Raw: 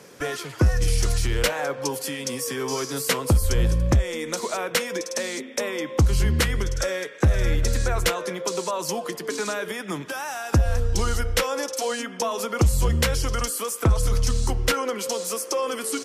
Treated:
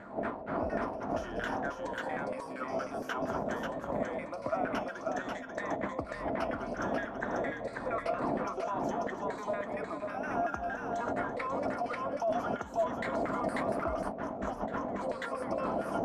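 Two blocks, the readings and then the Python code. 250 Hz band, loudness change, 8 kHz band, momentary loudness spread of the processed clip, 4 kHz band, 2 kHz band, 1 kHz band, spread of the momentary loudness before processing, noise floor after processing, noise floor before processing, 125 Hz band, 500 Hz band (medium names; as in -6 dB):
-6.5 dB, -10.5 dB, -28.0 dB, 4 LU, -22.0 dB, -9.0 dB, -3.0 dB, 7 LU, -43 dBFS, -39 dBFS, -22.0 dB, -6.5 dB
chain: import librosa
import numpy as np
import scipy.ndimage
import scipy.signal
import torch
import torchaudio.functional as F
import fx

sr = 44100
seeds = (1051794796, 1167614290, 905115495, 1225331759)

y = fx.spec_ripple(x, sr, per_octave=1.0, drift_hz=0.54, depth_db=13)
y = fx.dmg_wind(y, sr, seeds[0], corner_hz=290.0, level_db=-15.0)
y = fx.filter_lfo_bandpass(y, sr, shape='saw_down', hz=4.3, low_hz=580.0, high_hz=1700.0, q=3.1)
y = fx.comb_fb(y, sr, f0_hz=200.0, decay_s=0.24, harmonics='odd', damping=0.0, mix_pct=60)
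y = y + 10.0 ** (-4.0 / 20.0) * np.pad(y, (int(540 * sr / 1000.0), 0))[:len(y)]
y = fx.over_compress(y, sr, threshold_db=-36.0, ratio=-1.0)
y = fx.low_shelf(y, sr, hz=85.0, db=8.0)
y = fx.small_body(y, sr, hz=(260.0, 660.0), ring_ms=45, db=9)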